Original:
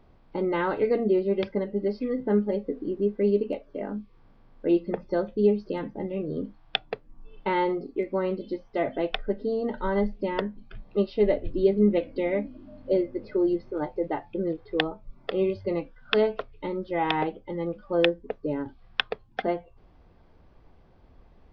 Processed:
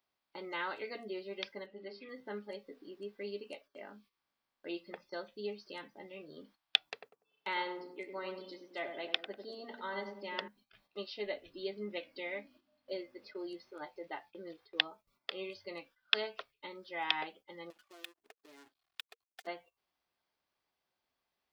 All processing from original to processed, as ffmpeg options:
-filter_complex "[0:a]asettb=1/sr,asplit=3[a][b][c];[a]atrim=end=1.664[d];[b]atrim=start=1.66:end=2.09,asetpts=PTS-STARTPTS,afade=t=in:d=0.004:c=qsin,afade=t=out:st=0.426:d=0.004:c=qsin,lowpass=f=4k:w=0.5412,lowpass=f=4k:w=1.3066,bandreject=f=50:t=h:w=6,bandreject=f=100:t=h:w=6,bandreject=f=150:t=h:w=6,bandreject=f=200:t=h:w=6,bandreject=f=250:t=h:w=6,bandreject=f=300:t=h:w=6,bandreject=f=350:t=h:w=6,bandreject=f=400:t=h:w=6,bandreject=f=450:t=h:w=6[e];[c]atrim=start=2.086[f];[d][e]acrossfade=d=0.004:c1=hsin:c2=qsin[g];[g][f]acrossfade=d=0.004:c1=qsin:c2=hsin,asettb=1/sr,asplit=3[h][i][j];[h]atrim=end=6.874[k];[i]atrim=start=6.87:end=10.48,asetpts=PTS-STARTPTS,afade=t=in:d=0.004:c=qsin,afade=t=out:st=3.606:d=0.004:c=qsin,highpass=77,asplit=2[l][m];[m]adelay=97,lowpass=f=850:p=1,volume=-4dB,asplit=2[n][o];[o]adelay=97,lowpass=f=850:p=1,volume=0.55,asplit=2[p][q];[q]adelay=97,lowpass=f=850:p=1,volume=0.55,asplit=2[r][s];[s]adelay=97,lowpass=f=850:p=1,volume=0.55,asplit=2[t][u];[u]adelay=97,lowpass=f=850:p=1,volume=0.55,asplit=2[v][w];[w]adelay=97,lowpass=f=850:p=1,volume=0.55,asplit=2[x][y];[y]adelay=97,lowpass=f=850:p=1,volume=0.55[z];[l][n][p][r][t][v][x][z]amix=inputs=8:normalize=0,atrim=end_sample=159201[aa];[j]atrim=start=10.476[ab];[k][aa]acrossfade=d=0.004:c1=hsin:c2=qsin[ac];[ac][ab]acrossfade=d=0.004:c1=qsin:c2=hsin,asettb=1/sr,asplit=3[ad][ae][af];[ad]atrim=end=17.704[ag];[ae]atrim=start=17.7:end=19.47,asetpts=PTS-STARTPTS,afade=t=in:d=0.004:c=qsin,afade=t=out:st=1.766:d=0.004:c=qsin,aecho=1:1:2.8:0.84,atrim=end_sample=78057,acompressor=threshold=-35dB:ratio=8:attack=3.2:release=140:knee=1:detection=peak,aeval=exprs='sgn(val(0))*max(abs(val(0))-0.00355,0)':c=same[ah];[af]atrim=start=19.466[ai];[ag][ah]acrossfade=d=0.004:c1=hsin:c2=qsin[aj];[aj][ai]acrossfade=d=0.004:c1=qsin:c2=hsin,bandreject=f=470:w=12,agate=range=-12dB:threshold=-42dB:ratio=16:detection=peak,aderivative,volume=6.5dB"

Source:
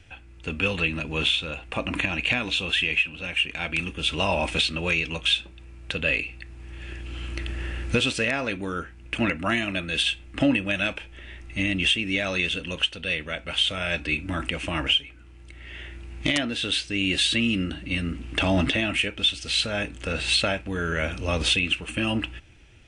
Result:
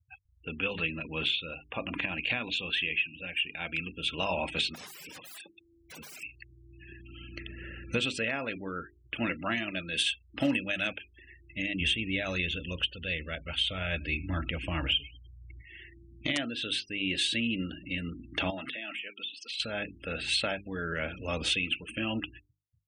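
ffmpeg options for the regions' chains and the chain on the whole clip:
-filter_complex "[0:a]asettb=1/sr,asplit=3[a][b][c];[a]atrim=end=4.744[d];[b]atrim=start=4.74:end=6.23,asetpts=PTS-STARTPTS,afade=t=in:d=0.004:c=qsin,afade=t=out:st=1.486:d=0.004:c=qsin,acompressor=threshold=-31dB:ratio=2.5:attack=3.2:release=140:knee=1:detection=peak,asplit=2[e][f];[f]highpass=f=720:p=1,volume=14dB,asoftclip=type=tanh:threshold=-12.5dB[g];[e][g]amix=inputs=2:normalize=0,lowpass=f=3.3k:p=1,volume=-6dB,aeval=exprs='(mod(33.5*val(0)+1,2)-1)/33.5':c=same[h];[c]atrim=start=6.226[i];[d][h]acrossfade=d=0.004:c1=hsin:c2=qsin[j];[j][i]acrossfade=d=0.004:c1=qsin:c2=hsin,asettb=1/sr,asplit=3[k][l][m];[k]atrim=end=9.954[n];[l]atrim=start=9.95:end=11.24,asetpts=PTS-STARTPTS,afade=t=in:d=0.004:c=qsin,afade=t=out:st=1.286:d=0.004:c=qsin,highshelf=f=6.4k:g=9,acrusher=bits=4:mode=log:mix=0:aa=0.000001[o];[m]atrim=start=11.236[p];[n][o]acrossfade=d=0.004:c1=hsin:c2=qsin[q];[q][p]acrossfade=d=0.004:c1=qsin:c2=hsin,asettb=1/sr,asplit=3[r][s][t];[r]atrim=end=11.804[u];[s]atrim=start=11.8:end=15.61,asetpts=PTS-STARTPTS,afade=t=in:d=0.004:c=qsin,afade=t=out:st=3.806:d=0.004:c=qsin,equalizer=f=69:w=0.84:g=13.5,acrusher=bits=7:mix=0:aa=0.5,aecho=1:1:101|202|303:0.0708|0.0326|0.015,atrim=end_sample=168021[v];[t]atrim=start=15.606[w];[u][v]acrossfade=d=0.004:c1=hsin:c2=qsin[x];[x][w]acrossfade=d=0.004:c1=qsin:c2=hsin,asettb=1/sr,asplit=3[y][z][aa];[y]atrim=end=18.504[ab];[z]atrim=start=18.5:end=19.6,asetpts=PTS-STARTPTS,afade=t=in:d=0.004:c=qsin,afade=t=out:st=1.096:d=0.004:c=qsin,highpass=f=760:p=1,acompressor=threshold=-27dB:ratio=10:attack=3.2:release=140:knee=1:detection=peak[ac];[aa]atrim=start=19.596[ad];[ab][ac]acrossfade=d=0.004:c1=hsin:c2=qsin[ae];[ae][ad]acrossfade=d=0.004:c1=qsin:c2=hsin,highpass=95,afftfilt=real='re*gte(hypot(re,im),0.0178)':imag='im*gte(hypot(re,im),0.0178)':win_size=1024:overlap=0.75,bandreject=f=50:t=h:w=6,bandreject=f=100:t=h:w=6,bandreject=f=150:t=h:w=6,bandreject=f=200:t=h:w=6,bandreject=f=250:t=h:w=6,bandreject=f=300:t=h:w=6,bandreject=f=350:t=h:w=6,bandreject=f=400:t=h:w=6,volume=-6.5dB"

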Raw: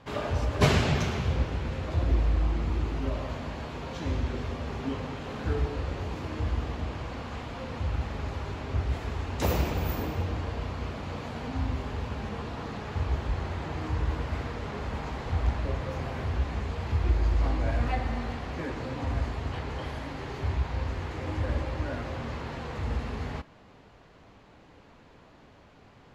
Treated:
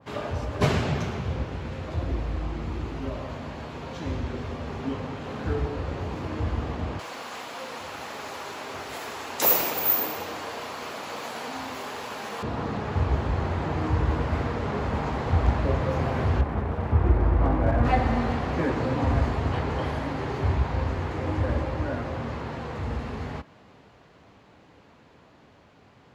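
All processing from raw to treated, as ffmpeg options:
-filter_complex "[0:a]asettb=1/sr,asplit=3[a][b][c];[a]atrim=end=6.994[d];[b]atrim=start=6.99:end=12.43,asetpts=PTS-STARTPTS,afade=t=in:d=0.004:c=qsin,afade=t=out:st=5.436:d=0.004:c=qsin,highpass=f=340:p=1,aemphasis=mode=production:type=riaa[e];[c]atrim=start=12.426[f];[d][e]acrossfade=d=0.004:c1=hsin:c2=qsin[g];[g][f]acrossfade=d=0.004:c1=qsin:c2=hsin,asettb=1/sr,asplit=3[h][i][j];[h]atrim=end=16.414[k];[i]atrim=start=16.41:end=17.85,asetpts=PTS-STARTPTS,afade=t=in:d=0.004:c=qsin,afade=t=out:st=1.436:d=0.004:c=qsin,lowpass=1.7k,aeval=exprs='sgn(val(0))*max(abs(val(0))-0.00841,0)':c=same[l];[j]atrim=start=17.846[m];[k][l]acrossfade=d=0.004:c1=hsin:c2=qsin[n];[n][m]acrossfade=d=0.004:c1=qsin:c2=hsin,highpass=74,dynaudnorm=f=620:g=21:m=11.5dB,adynamicequalizer=threshold=0.00794:dfrequency=1800:dqfactor=0.7:tfrequency=1800:tqfactor=0.7:attack=5:release=100:ratio=0.375:range=3:mode=cutabove:tftype=highshelf"

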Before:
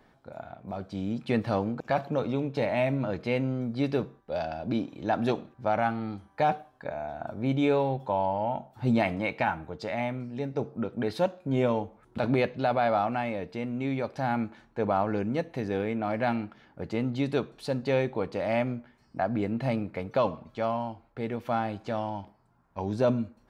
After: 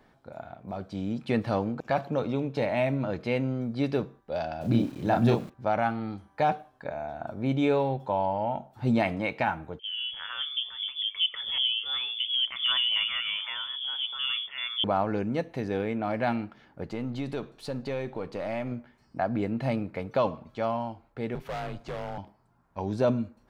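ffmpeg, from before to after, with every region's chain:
-filter_complex "[0:a]asettb=1/sr,asplit=3[a][b][c];[a]atrim=end=4.614[d];[b]atrim=start=4.61:end=5.5,asetpts=PTS-STARTPTS,afade=t=in:d=0.004:c=qsin,afade=t=out:st=0.886:d=0.004:c=qsin,equalizer=f=130:w=1.2:g=9,aeval=exprs='val(0)*gte(abs(val(0)),0.00447)':c=same,asplit=2[e][f];[f]adelay=34,volume=-4dB[g];[e][g]amix=inputs=2:normalize=0,atrim=end_sample=39249[h];[c]atrim=start=5.496[i];[d][h]acrossfade=d=0.004:c1=hsin:c2=qsin[j];[j][i]acrossfade=d=0.004:c1=qsin:c2=hsin,asettb=1/sr,asplit=3[k][l][m];[k]atrim=end=9.794[n];[l]atrim=start=9.79:end=14.84,asetpts=PTS-STARTPTS,afade=t=in:d=0.004:c=qsin,afade=t=out:st=5.046:d=0.004:c=qsin,acrossover=split=230|1000[o][p][q];[q]adelay=320[r];[o]adelay=390[s];[s][p][r]amix=inputs=3:normalize=0,atrim=end_sample=222705,lowpass=f=3.1k:t=q:w=0.5098,lowpass=f=3.1k:t=q:w=0.6013,lowpass=f=3.1k:t=q:w=0.9,lowpass=f=3.1k:t=q:w=2.563,afreqshift=-3600[t];[m]atrim=start=14.836[u];[n][t]acrossfade=d=0.004:c1=hsin:c2=qsin[v];[v][u]acrossfade=d=0.004:c1=qsin:c2=hsin,asettb=1/sr,asplit=3[w][x][y];[w]atrim=end=16.844[z];[x]atrim=start=16.84:end=18.72,asetpts=PTS-STARTPTS,afade=t=in:d=0.004:c=qsin,afade=t=out:st=1.876:d=0.004:c=qsin,aeval=exprs='if(lt(val(0),0),0.708*val(0),val(0))':c=same,acompressor=threshold=-29dB:ratio=3:attack=3.2:release=140:knee=1:detection=peak[aa];[y]atrim=start=18.716[ab];[z][aa]acrossfade=d=0.004:c1=hsin:c2=qsin[ac];[ac][ab]acrossfade=d=0.004:c1=qsin:c2=hsin,asettb=1/sr,asplit=3[ad][ae][af];[ad]atrim=end=21.354[ag];[ae]atrim=start=21.35:end=22.18,asetpts=PTS-STARTPTS,afade=t=in:d=0.004:c=qsin,afade=t=out:st=0.826:d=0.004:c=qsin,afreqshift=-85,volume=31dB,asoftclip=hard,volume=-31dB[ah];[af]atrim=start=22.176[ai];[ag][ah]acrossfade=d=0.004:c1=hsin:c2=qsin[aj];[aj][ai]acrossfade=d=0.004:c1=qsin:c2=hsin"

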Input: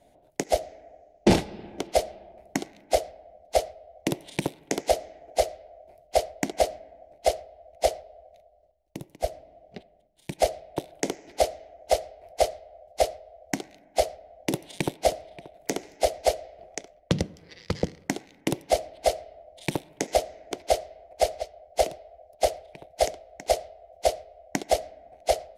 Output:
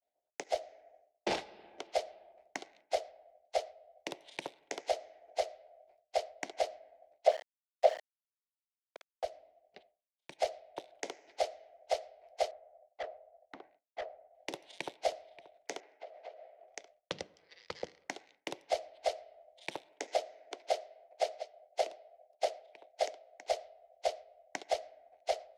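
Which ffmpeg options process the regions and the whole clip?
-filter_complex "[0:a]asettb=1/sr,asplit=3[a][b][c];[a]atrim=end=7.274[d];[b]atrim=start=7.27:end=9.24,asetpts=PTS-STARTPTS,afade=t=in:d=0.004:c=qsin,afade=t=out:st=1.966:d=0.004:c=qsin,acrossover=split=4200[e][f];[f]acompressor=threshold=-43dB:ratio=4:attack=1:release=60[g];[e][g]amix=inputs=2:normalize=0,highpass=f=550:t=q:w=2.8,aeval=exprs='val(0)*gte(abs(val(0)),0.0316)':c=same[h];[c]atrim=start=9.236[i];[d][h]acrossfade=d=0.004:c1=hsin:c2=qsin[j];[j][i]acrossfade=d=0.004:c1=qsin:c2=hsin,asettb=1/sr,asplit=3[k][l][m];[k]atrim=end=12.514[n];[l]atrim=start=12.51:end=14.35,asetpts=PTS-STARTPTS,afade=t=in:d=0.004:c=qsin,afade=t=out:st=1.836:d=0.004:c=qsin,agate=range=-33dB:threshold=-49dB:ratio=3:release=100:detection=peak,lowpass=1.4k,asoftclip=type=hard:threshold=-25.5dB[o];[m]atrim=start=14.346[p];[n][o]acrossfade=d=0.004:c1=hsin:c2=qsin[q];[q][p]acrossfade=d=0.004:c1=qsin:c2=hsin,asettb=1/sr,asplit=3[r][s][t];[r]atrim=end=15.804[u];[s]atrim=start=15.8:end=16.68,asetpts=PTS-STARTPTS,afade=t=in:d=0.004:c=qsin,afade=t=out:st=0.876:d=0.004:c=qsin,acompressor=threshold=-35dB:ratio=4:attack=3.2:release=140:knee=1:detection=peak,highpass=280,lowpass=2.2k[v];[t]atrim=start=16.676[w];[u][v]acrossfade=d=0.004:c1=hsin:c2=qsin[x];[x][w]acrossfade=d=0.004:c1=qsin:c2=hsin,asettb=1/sr,asplit=3[y][z][aa];[y]atrim=end=19.874[ab];[z]atrim=start=19.87:end=23.42,asetpts=PTS-STARTPTS,afade=t=in:d=0.004:c=qsin,afade=t=out:st=3.546:d=0.004:c=qsin,lowshelf=f=190:t=q:w=1.5:g=-7.5,bandreject=f=1.1k:w=29[ac];[aa]atrim=start=23.416[ad];[ab][ac]acrossfade=d=0.004:c1=hsin:c2=qsin[ae];[ae][ad]acrossfade=d=0.004:c1=qsin:c2=hsin,agate=range=-33dB:threshold=-47dB:ratio=3:detection=peak,acrossover=split=450 6600:gain=0.0891 1 0.126[af][ag][ah];[af][ag][ah]amix=inputs=3:normalize=0,volume=-8dB"

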